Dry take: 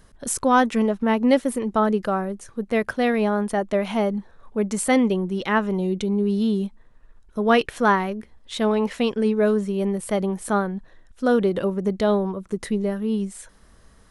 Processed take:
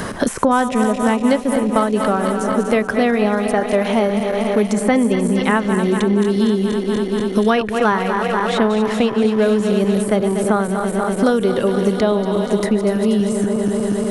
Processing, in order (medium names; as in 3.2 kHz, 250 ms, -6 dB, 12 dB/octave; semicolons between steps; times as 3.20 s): backward echo that repeats 120 ms, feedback 84%, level -10.5 dB; three bands compressed up and down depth 100%; trim +3.5 dB